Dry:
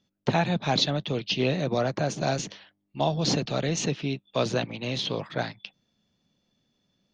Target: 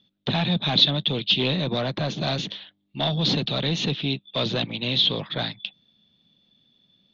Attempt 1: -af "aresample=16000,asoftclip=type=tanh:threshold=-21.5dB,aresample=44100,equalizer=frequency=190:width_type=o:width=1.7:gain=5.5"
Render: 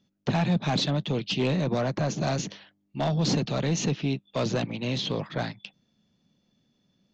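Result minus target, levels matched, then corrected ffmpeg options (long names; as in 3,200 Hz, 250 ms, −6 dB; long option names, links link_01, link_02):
4,000 Hz band −7.5 dB
-af "aresample=16000,asoftclip=type=tanh:threshold=-21.5dB,aresample=44100,lowpass=frequency=3600:width_type=q:width=6.2,equalizer=frequency=190:width_type=o:width=1.7:gain=5.5"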